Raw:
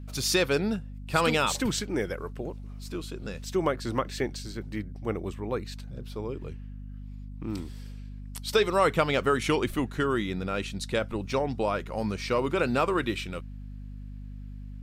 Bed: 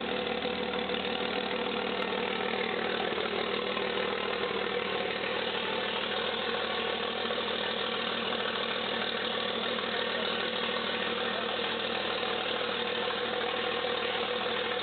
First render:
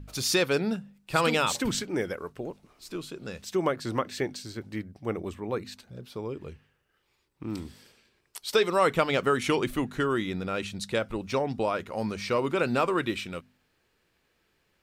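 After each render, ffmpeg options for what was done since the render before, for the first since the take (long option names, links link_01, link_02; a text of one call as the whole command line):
ffmpeg -i in.wav -af "bandreject=frequency=50:width_type=h:width=4,bandreject=frequency=100:width_type=h:width=4,bandreject=frequency=150:width_type=h:width=4,bandreject=frequency=200:width_type=h:width=4,bandreject=frequency=250:width_type=h:width=4" out.wav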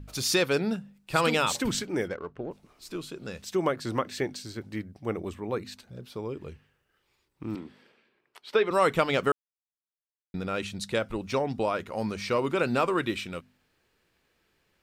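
ffmpeg -i in.wav -filter_complex "[0:a]asplit=3[link_01][link_02][link_03];[link_01]afade=type=out:start_time=2.07:duration=0.02[link_04];[link_02]adynamicsmooth=sensitivity=6.5:basefreq=1800,afade=type=in:start_time=2.07:duration=0.02,afade=type=out:start_time=2.5:duration=0.02[link_05];[link_03]afade=type=in:start_time=2.5:duration=0.02[link_06];[link_04][link_05][link_06]amix=inputs=3:normalize=0,asettb=1/sr,asplit=3[link_07][link_08][link_09];[link_07]atrim=end=7.554[link_10];[link_08]atrim=start=7.55:end=8.71,asetpts=PTS-STARTPTS,afade=type=in:duration=0.004:curve=qsin,afade=type=out:start_time=1.156:duration=0.004:curve=qsin,acrossover=split=160 3200:gain=0.0794 1 0.0891[link_11][link_12][link_13];[link_11][link_12][link_13]amix=inputs=3:normalize=0[link_14];[link_09]atrim=start=8.706[link_15];[link_10][link_14]acrossfade=duration=0.004:curve1=hsin:curve2=qsin[link_16];[link_16][link_15]acrossfade=duration=0.004:curve1=qsin:curve2=hsin,asplit=3[link_17][link_18][link_19];[link_17]atrim=end=9.32,asetpts=PTS-STARTPTS,afade=type=out:start_time=9.316:duration=0.004:curve=hsin[link_20];[link_18]atrim=start=9.32:end=10.34,asetpts=PTS-STARTPTS,volume=0[link_21];[link_19]atrim=start=10.34,asetpts=PTS-STARTPTS,afade=type=in:duration=0.004:curve=hsin[link_22];[link_20][link_21][link_22]concat=n=3:v=0:a=1" out.wav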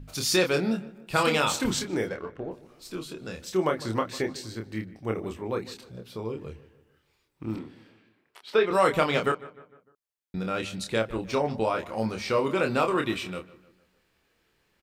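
ffmpeg -i in.wav -filter_complex "[0:a]asplit=2[link_01][link_02];[link_02]adelay=27,volume=-5dB[link_03];[link_01][link_03]amix=inputs=2:normalize=0,asplit=2[link_04][link_05];[link_05]adelay=151,lowpass=frequency=2700:poles=1,volume=-18dB,asplit=2[link_06][link_07];[link_07]adelay=151,lowpass=frequency=2700:poles=1,volume=0.49,asplit=2[link_08][link_09];[link_09]adelay=151,lowpass=frequency=2700:poles=1,volume=0.49,asplit=2[link_10][link_11];[link_11]adelay=151,lowpass=frequency=2700:poles=1,volume=0.49[link_12];[link_04][link_06][link_08][link_10][link_12]amix=inputs=5:normalize=0" out.wav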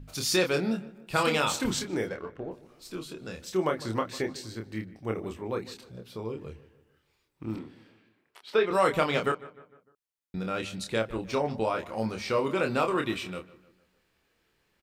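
ffmpeg -i in.wav -af "volume=-2dB" out.wav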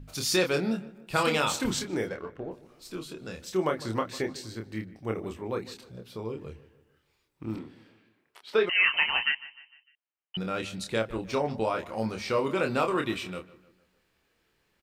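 ffmpeg -i in.wav -filter_complex "[0:a]asettb=1/sr,asplit=3[link_01][link_02][link_03];[link_01]atrim=end=8.694[link_04];[link_02]atrim=start=8.69:end=10.37,asetpts=PTS-STARTPTS,afade=type=in:duration=0.004:curve=qsin,afade=type=out:start_time=1.676:duration=0.004:curve=qsin,lowpass=frequency=2700:width_type=q:width=0.5098,lowpass=frequency=2700:width_type=q:width=0.6013,lowpass=frequency=2700:width_type=q:width=0.9,lowpass=frequency=2700:width_type=q:width=2.563,afreqshift=-3200[link_05];[link_03]atrim=start=10.366[link_06];[link_04][link_05]acrossfade=duration=0.004:curve1=hsin:curve2=qsin[link_07];[link_07][link_06]acrossfade=duration=0.004:curve1=qsin:curve2=hsin" out.wav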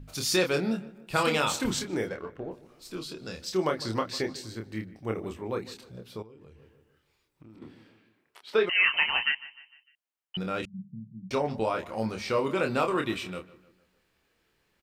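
ffmpeg -i in.wav -filter_complex "[0:a]asettb=1/sr,asplit=3[link_01][link_02][link_03];[link_01]atrim=end=2.964[link_04];[link_02]atrim=start=2.96:end=4.36,asetpts=PTS-STARTPTS,afade=type=in:duration=0.004:curve=qsin,afade=type=out:start_time=1.396:duration=0.004:curve=qsin,equalizer=frequency=4800:width=2.5:gain=9.5[link_05];[link_03]atrim=start=4.356[link_06];[link_04][link_05]acrossfade=duration=0.004:curve1=hsin:curve2=qsin[link_07];[link_07][link_06]acrossfade=duration=0.004:curve1=qsin:curve2=hsin,asettb=1/sr,asplit=3[link_08][link_09][link_10];[link_08]atrim=end=6.224[link_11];[link_09]atrim=start=6.22:end=7.62,asetpts=PTS-STARTPTS,afade=type=in:duration=0.004:curve=qsin,afade=type=out:start_time=1.396:duration=0.004:curve=qsin,acompressor=threshold=-49dB:ratio=6:attack=3.2:release=140:knee=1:detection=peak[link_12];[link_10]atrim=start=7.616[link_13];[link_11][link_12]acrossfade=duration=0.004:curve1=hsin:curve2=qsin[link_14];[link_14][link_13]acrossfade=duration=0.004:curve1=qsin:curve2=hsin,asettb=1/sr,asplit=3[link_15][link_16][link_17];[link_15]atrim=end=10.654[link_18];[link_16]atrim=start=10.65:end=11.31,asetpts=PTS-STARTPTS,afade=type=in:duration=0.004:curve=qsin,afade=type=out:start_time=0.656:duration=0.004:curve=qsin,asuperpass=centerf=160:order=8:qfactor=1.6[link_19];[link_17]atrim=start=11.306[link_20];[link_18][link_19]acrossfade=duration=0.004:curve1=hsin:curve2=qsin[link_21];[link_21][link_20]acrossfade=duration=0.004:curve1=qsin:curve2=hsin" out.wav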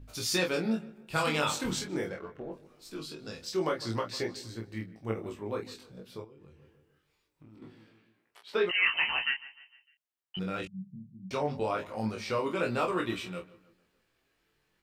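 ffmpeg -i in.wav -af "flanger=delay=17:depth=4.2:speed=0.23" out.wav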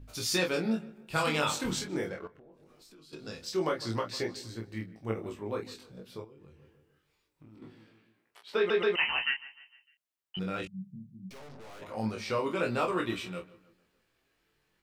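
ffmpeg -i in.wav -filter_complex "[0:a]asettb=1/sr,asplit=3[link_01][link_02][link_03];[link_01]atrim=end=2.274[link_04];[link_02]atrim=start=2.27:end=3.13,asetpts=PTS-STARTPTS,afade=type=in:duration=0.004:curve=qsin,afade=type=out:start_time=0.856:duration=0.004:curve=qsin,acompressor=threshold=-54dB:ratio=6:attack=3.2:release=140:knee=1:detection=peak[link_05];[link_03]atrim=start=3.126[link_06];[link_04][link_05]acrossfade=duration=0.004:curve1=hsin:curve2=qsin[link_07];[link_07][link_06]acrossfade=duration=0.004:curve1=qsin:curve2=hsin,asplit=3[link_08][link_09][link_10];[link_08]afade=type=out:start_time=11.29:duration=0.02[link_11];[link_09]aeval=exprs='(tanh(251*val(0)+0.75)-tanh(0.75))/251':channel_layout=same,afade=type=in:start_time=11.29:duration=0.02,afade=type=out:start_time=11.81:duration=0.02[link_12];[link_10]afade=type=in:start_time=11.81:duration=0.02[link_13];[link_11][link_12][link_13]amix=inputs=3:normalize=0,asplit=4[link_14][link_15][link_16][link_17];[link_14]atrim=end=8.702[link_18];[link_15]atrim=start=8.568:end=8.702[link_19];[link_16]atrim=start=8.568:end=8.702[link_20];[link_17]atrim=start=8.958[link_21];[link_18][link_19]acrossfade=duration=0.004:curve1=hsin:curve2=hsin[link_22];[link_22][link_20]acrossfade=duration=0.004:curve1=hsin:curve2=hsin[link_23];[link_23][link_21]acrossfade=duration=0.004:curve1=hsin:curve2=hsin" out.wav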